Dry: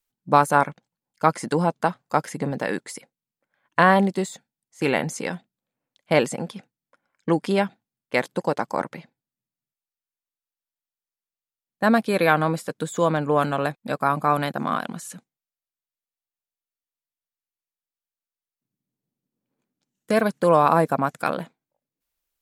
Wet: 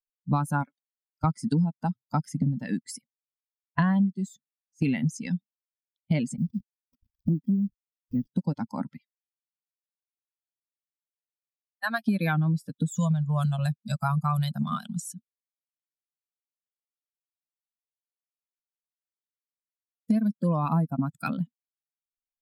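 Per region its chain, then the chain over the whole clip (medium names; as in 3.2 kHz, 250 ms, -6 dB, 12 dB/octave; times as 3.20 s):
0.66–1.24 s: high-pass 340 Hz 24 dB/octave + band-stop 920 Hz, Q 6.2
6.38–8.27 s: boxcar filter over 60 samples + upward compressor, threshold -28 dBFS + word length cut 8-bit, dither none
8.97–12.05 s: high-pass 840 Hz + doubling 13 ms -13 dB
12.97–15.00 s: Chebyshev band-stop 200–560 Hz + peaking EQ 7.4 kHz +11 dB 1.3 oct
whole clip: expander on every frequency bin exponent 2; resonant low shelf 300 Hz +11 dB, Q 3; compression 6:1, threshold -27 dBFS; trim +4 dB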